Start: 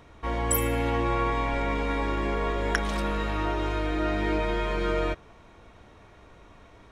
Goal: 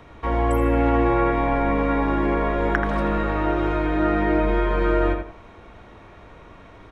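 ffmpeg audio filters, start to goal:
-filter_complex "[0:a]bass=f=250:g=-1,treble=f=4k:g=-8,acrossover=split=180|1900[a][b][c];[c]acompressor=threshold=-51dB:ratio=6[d];[a][b][d]amix=inputs=3:normalize=0,asplit=2[e][f];[f]adelay=83,lowpass=f=4.1k:p=1,volume=-6dB,asplit=2[g][h];[h]adelay=83,lowpass=f=4.1k:p=1,volume=0.27,asplit=2[i][j];[j]adelay=83,lowpass=f=4.1k:p=1,volume=0.27[k];[e][g][i][k]amix=inputs=4:normalize=0,volume=6.5dB"

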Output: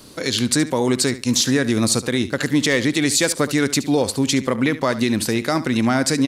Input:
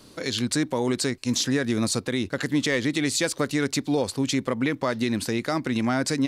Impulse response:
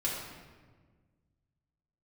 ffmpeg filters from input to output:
-filter_complex "[0:a]highshelf=f=8.9k:g=7,asplit=2[a][b];[b]aecho=0:1:71|142:0.178|0.032[c];[a][c]amix=inputs=2:normalize=0,volume=5.5dB"

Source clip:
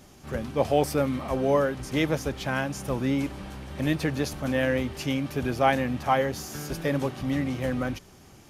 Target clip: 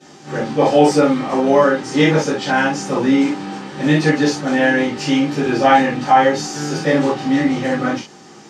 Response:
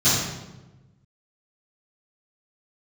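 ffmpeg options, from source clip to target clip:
-filter_complex "[0:a]highpass=360,lowpass=5.6k[a];[1:a]atrim=start_sample=2205,atrim=end_sample=4410,asetrate=52920,aresample=44100[b];[a][b]afir=irnorm=-1:irlink=0,alimiter=level_in=-2dB:limit=-1dB:release=50:level=0:latency=1,volume=-1dB"

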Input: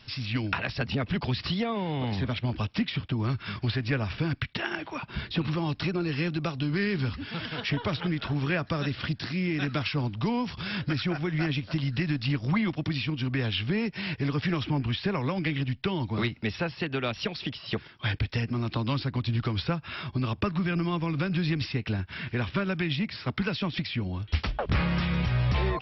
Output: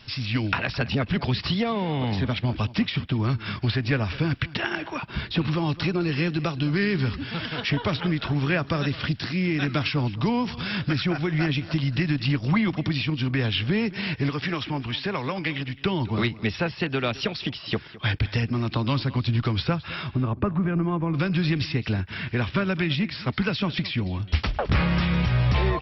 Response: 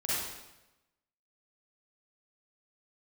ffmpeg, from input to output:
-filter_complex "[0:a]asettb=1/sr,asplit=3[a][b][c];[a]atrim=end=14.294[d];[b]atrim=start=14.29:end=15.81,asetpts=PTS-STARTPTS,afade=t=in:d=0.004:c=qsin,afade=t=out:st=1.516:d=0.004:c=qsin,lowshelf=f=310:g=-8.5[e];[c]atrim=start=15.806[f];[d][e]acrossfade=d=0.004:c1=hsin:c2=qsin[g];[g][f]acrossfade=d=0.004:c1=qsin:c2=hsin,asplit=3[h][i][j];[h]afade=t=out:st=20.12:d=0.02[k];[i]lowpass=1.3k,afade=t=in:st=20.12:d=0.02,afade=t=out:st=21.13:d=0.02[l];[j]afade=t=in:st=21.13:d=0.02[m];[k][l][m]amix=inputs=3:normalize=0,aecho=1:1:212:0.119,volume=4dB"

